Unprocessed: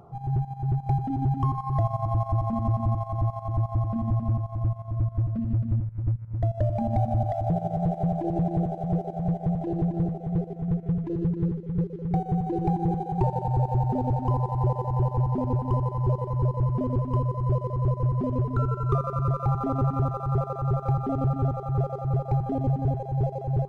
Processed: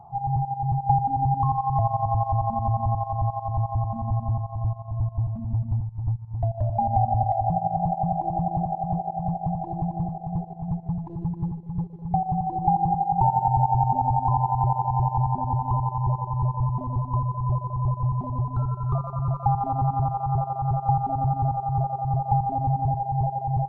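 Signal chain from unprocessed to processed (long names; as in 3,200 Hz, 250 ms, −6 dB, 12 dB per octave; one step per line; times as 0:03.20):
drawn EQ curve 140 Hz 0 dB, 500 Hz −17 dB, 840 Hz +14 dB, 1,400 Hz −14 dB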